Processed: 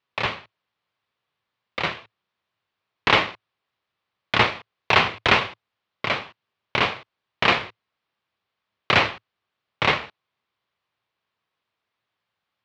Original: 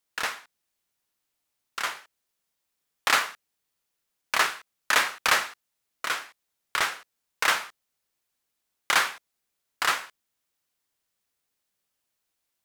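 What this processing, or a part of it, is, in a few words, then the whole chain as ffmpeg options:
ring modulator pedal into a guitar cabinet: -af "aeval=exprs='val(0)*sgn(sin(2*PI*850*n/s))':c=same,highpass=76,equalizer=f=110:t=q:w=4:g=7,equalizer=f=280:t=q:w=4:g=-5,equalizer=f=1100:t=q:w=4:g=5,lowpass=f=3800:w=0.5412,lowpass=f=3800:w=1.3066,volume=1.78"

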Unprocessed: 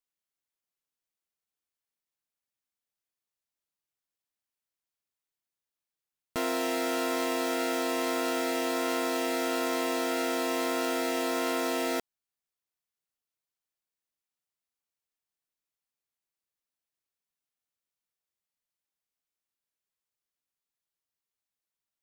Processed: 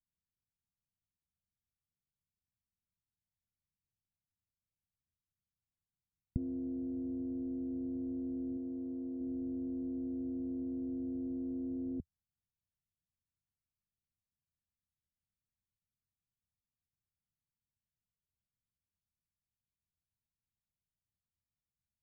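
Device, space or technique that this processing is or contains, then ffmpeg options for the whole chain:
the neighbour's flat through the wall: -filter_complex "[0:a]lowpass=f=190:w=0.5412,lowpass=f=190:w=1.3066,equalizer=f=82:t=o:w=0.78:g=6,asettb=1/sr,asplit=3[s0][s1][s2];[s0]atrim=end=8.574[s3];[s1]atrim=start=8.57:end=9.21,asetpts=PTS-STARTPTS,afade=t=in:d=0.004:c=qsin,afade=t=out:st=0.636:d=0.004:c=qsin,lowshelf=f=140:g=-9[s4];[s2]atrim=start=9.206[s5];[s3][s4]acrossfade=d=0.004:c1=hsin:c2=qsin[s6];[s6][s5]acrossfade=d=0.004:c1=qsin:c2=hsin,volume=3.16"

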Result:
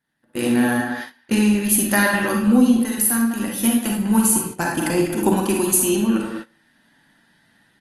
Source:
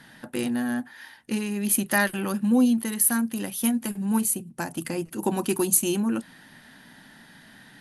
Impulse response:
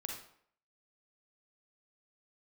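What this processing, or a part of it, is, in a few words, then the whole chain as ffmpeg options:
speakerphone in a meeting room: -filter_complex "[1:a]atrim=start_sample=2205[s0];[0:a][s0]afir=irnorm=-1:irlink=0,asplit=2[s1][s2];[s2]adelay=200,highpass=300,lowpass=3400,asoftclip=type=hard:threshold=0.133,volume=0.398[s3];[s1][s3]amix=inputs=2:normalize=0,dynaudnorm=f=170:g=5:m=6.31,agate=range=0.0891:threshold=0.0447:ratio=16:detection=peak,volume=0.75" -ar 48000 -c:a libopus -b:a 32k

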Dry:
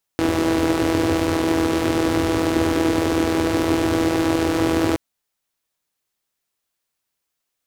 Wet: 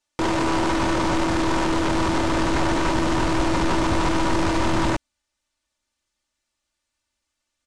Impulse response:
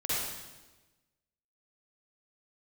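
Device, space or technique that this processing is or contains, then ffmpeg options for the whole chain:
synthesiser wavefolder: -af "aecho=1:1:3.4:0.96,aeval=exprs='0.15*(abs(mod(val(0)/0.15+3,4)-2)-1)':c=same,lowpass=f=8500:w=0.5412,lowpass=f=8500:w=1.3066,asubboost=boost=2:cutoff=200"

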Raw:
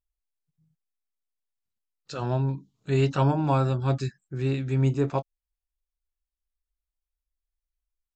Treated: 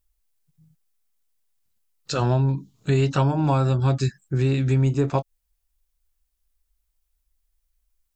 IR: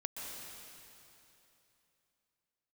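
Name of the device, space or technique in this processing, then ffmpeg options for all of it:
ASMR close-microphone chain: -af "lowshelf=f=110:g=5.5,acompressor=threshold=0.0447:ratio=5,highshelf=f=6600:g=7.5,volume=2.82"

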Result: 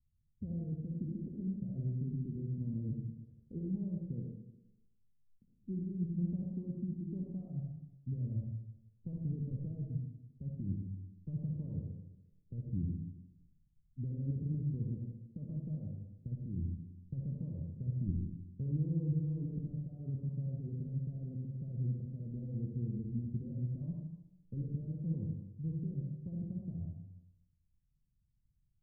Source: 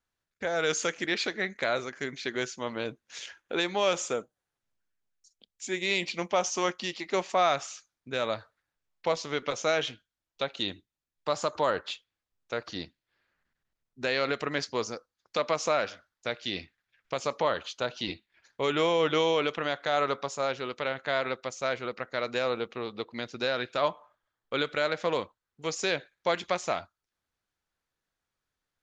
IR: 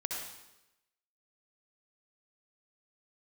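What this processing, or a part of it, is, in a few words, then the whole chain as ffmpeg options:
club heard from the street: -filter_complex "[0:a]alimiter=limit=0.0631:level=0:latency=1:release=28,lowpass=f=160:w=0.5412,lowpass=f=160:w=1.3066[s0];[1:a]atrim=start_sample=2205[s1];[s0][s1]afir=irnorm=-1:irlink=0,volume=5.96"

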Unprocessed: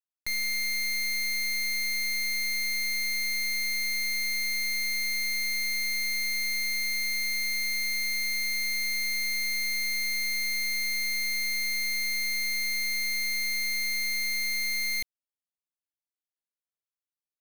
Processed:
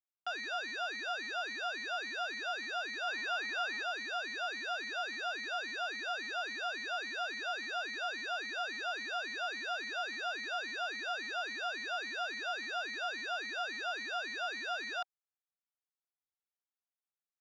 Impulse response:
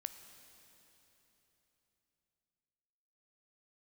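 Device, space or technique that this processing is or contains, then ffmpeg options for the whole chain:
voice changer toy: -filter_complex "[0:a]asettb=1/sr,asplit=3[s0][s1][s2];[s0]atrim=end=3.074[s3];[s1]atrim=start=3.07:end=3.83,asetpts=PTS-STARTPTS,afade=t=in:d=0.004:c=qsin,afade=t=out:st=0.756:d=0.004:c=qsin,equalizer=f=580:w=0.35:g=7[s4];[s2]atrim=start=3.826[s5];[s3][s4]acrossfade=d=0.004:c1=hsin:c2=qsin[s6];[s6][s5]acrossfade=d=0.004:c1=qsin:c2=hsin,aeval=exprs='val(0)*sin(2*PI*470*n/s+470*0.55/3.6*sin(2*PI*3.6*n/s))':c=same,highpass=510,equalizer=f=530:t=q:w=4:g=-9,equalizer=f=770:t=q:w=4:g=9,equalizer=f=1300:t=q:w=4:g=7,equalizer=f=2500:t=q:w=4:g=-7,equalizer=f=4700:t=q:w=4:g=-7,lowpass=f=4900:w=0.5412,lowpass=f=4900:w=1.3066,volume=0.562"

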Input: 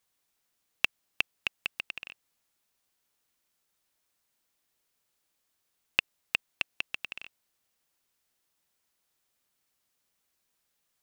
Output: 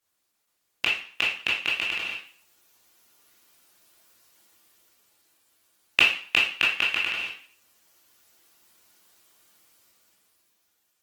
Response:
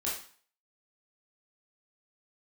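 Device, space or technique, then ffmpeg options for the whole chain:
far-field microphone of a smart speaker: -filter_complex "[0:a]asettb=1/sr,asplit=3[s0][s1][s2];[s0]atrim=end=6.504[s3];[s1]atrim=start=6.5:end=7.16,asetpts=PTS-STARTPTS,afade=t=in:d=0.004:c=qsin,afade=t=out:st=0.656:d=0.004:c=qsin,equalizer=f=1500:w=1.7:g=5[s4];[s2]atrim=start=7.156[s5];[s3][s4]acrossfade=d=0.004:c1=hsin:c2=qsin[s6];[s6][s5]acrossfade=d=0.004:c1=qsin:c2=hsin[s7];[1:a]atrim=start_sample=2205[s8];[s7][s8]afir=irnorm=-1:irlink=0,highpass=f=100:p=1,dynaudnorm=f=180:g=13:m=4.47" -ar 48000 -c:a libopus -b:a 16k

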